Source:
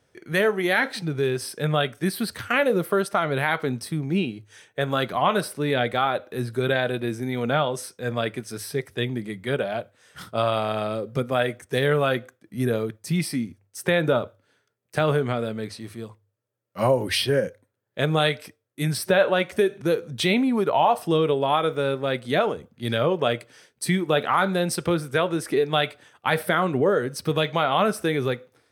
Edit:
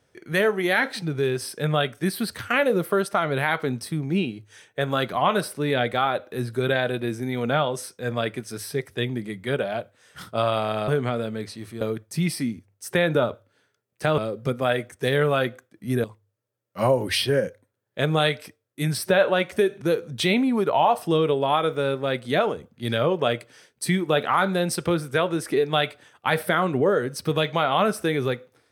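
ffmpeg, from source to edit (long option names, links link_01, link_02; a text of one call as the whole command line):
ffmpeg -i in.wav -filter_complex "[0:a]asplit=5[link_01][link_02][link_03][link_04][link_05];[link_01]atrim=end=10.882[link_06];[link_02]atrim=start=15.108:end=16.042[link_07];[link_03]atrim=start=12.738:end=15.112[link_08];[link_04]atrim=start=10.878:end=12.742[link_09];[link_05]atrim=start=16.038[link_10];[link_06][link_07]acrossfade=duration=0.004:curve1=hsin:curve2=hsin[link_11];[link_11][link_08]acrossfade=duration=0.004:curve1=hsin:curve2=hsin[link_12];[link_12][link_09]acrossfade=duration=0.004:curve1=hsin:curve2=hsin[link_13];[link_13][link_10]acrossfade=duration=0.004:curve1=hsin:curve2=hsin" out.wav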